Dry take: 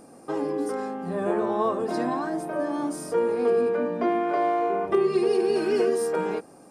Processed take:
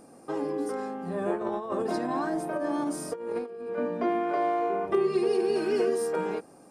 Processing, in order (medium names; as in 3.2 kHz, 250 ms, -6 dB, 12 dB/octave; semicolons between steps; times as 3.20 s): 1.34–3.79 s: compressor with a negative ratio -27 dBFS, ratio -0.5; trim -3 dB